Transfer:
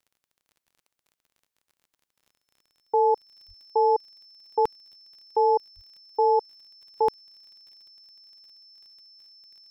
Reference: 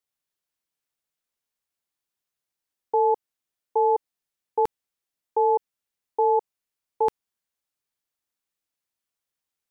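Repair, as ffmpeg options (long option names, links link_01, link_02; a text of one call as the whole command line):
ffmpeg -i in.wav -filter_complex "[0:a]adeclick=threshold=4,bandreject=frequency=5300:width=30,asplit=3[link_01][link_02][link_03];[link_01]afade=type=out:start_time=3.47:duration=0.02[link_04];[link_02]highpass=frequency=140:width=0.5412,highpass=frequency=140:width=1.3066,afade=type=in:start_time=3.47:duration=0.02,afade=type=out:start_time=3.59:duration=0.02[link_05];[link_03]afade=type=in:start_time=3.59:duration=0.02[link_06];[link_04][link_05][link_06]amix=inputs=3:normalize=0,asplit=3[link_07][link_08][link_09];[link_07]afade=type=out:start_time=5.75:duration=0.02[link_10];[link_08]highpass=frequency=140:width=0.5412,highpass=frequency=140:width=1.3066,afade=type=in:start_time=5.75:duration=0.02,afade=type=out:start_time=5.87:duration=0.02[link_11];[link_09]afade=type=in:start_time=5.87:duration=0.02[link_12];[link_10][link_11][link_12]amix=inputs=3:normalize=0" out.wav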